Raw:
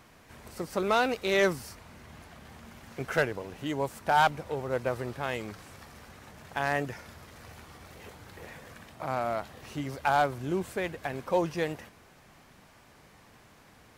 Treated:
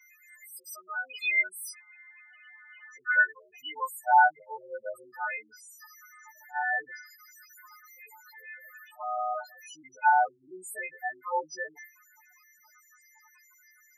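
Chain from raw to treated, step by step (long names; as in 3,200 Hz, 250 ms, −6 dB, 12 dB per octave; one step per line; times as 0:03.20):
every partial snapped to a pitch grid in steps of 3 semitones
0:01.73–0:02.91: elliptic band-pass filter 390–3,500 Hz, stop band 40 dB
spectral peaks only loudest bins 4
high-pass filter sweep 2,200 Hz → 910 Hz, 0:02.25–0:04.02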